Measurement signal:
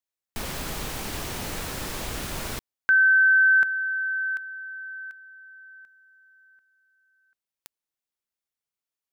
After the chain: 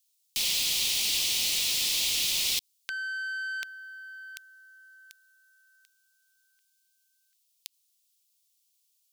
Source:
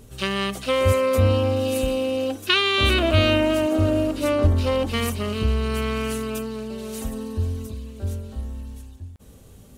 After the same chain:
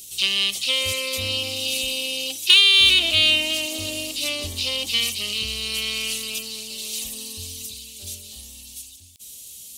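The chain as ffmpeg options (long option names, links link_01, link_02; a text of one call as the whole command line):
ffmpeg -i in.wav -filter_complex "[0:a]acrossover=split=4600[link_01][link_02];[link_02]acompressor=threshold=-49dB:ratio=4:attack=1:release=60[link_03];[link_01][link_03]amix=inputs=2:normalize=0,lowshelf=frequency=120:gain=-6.5,aexciter=amount=12.6:drive=9.6:freq=2500,volume=-13dB" out.wav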